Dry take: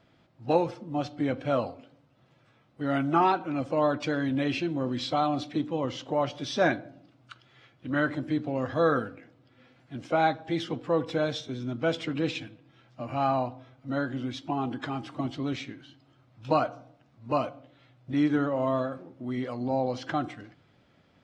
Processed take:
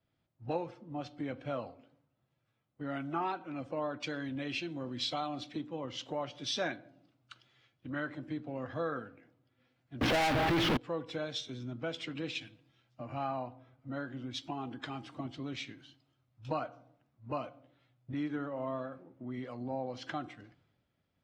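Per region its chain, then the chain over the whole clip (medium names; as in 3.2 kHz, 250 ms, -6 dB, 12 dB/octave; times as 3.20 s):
10.01–10.77 s: one-bit delta coder 32 kbps, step -25.5 dBFS + low-pass 1.1 kHz 6 dB/octave + waveshaping leveller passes 5
whole clip: dynamic bell 2.6 kHz, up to +4 dB, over -44 dBFS, Q 0.79; compression 2.5:1, threshold -40 dBFS; three bands expanded up and down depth 70%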